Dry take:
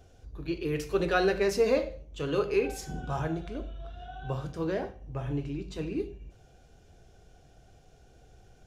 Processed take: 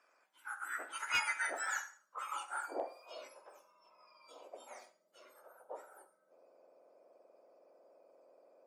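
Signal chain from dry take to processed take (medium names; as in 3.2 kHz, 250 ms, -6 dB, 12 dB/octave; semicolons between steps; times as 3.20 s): spectrum inverted on a logarithmic axis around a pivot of 1.9 kHz; band-pass sweep 1.6 kHz -> 560 Hz, 1.87–3.36 s; overload inside the chain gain 32.5 dB; trim +6.5 dB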